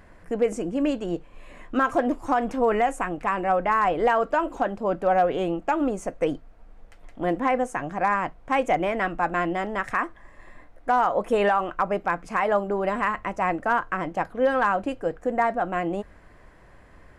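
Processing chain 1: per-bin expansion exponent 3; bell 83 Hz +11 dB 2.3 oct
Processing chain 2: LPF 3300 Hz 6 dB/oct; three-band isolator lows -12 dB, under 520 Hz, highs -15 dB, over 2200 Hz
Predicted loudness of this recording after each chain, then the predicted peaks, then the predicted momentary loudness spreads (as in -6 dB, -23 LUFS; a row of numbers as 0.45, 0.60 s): -31.5, -28.0 LUFS; -14.5, -12.0 dBFS; 12, 10 LU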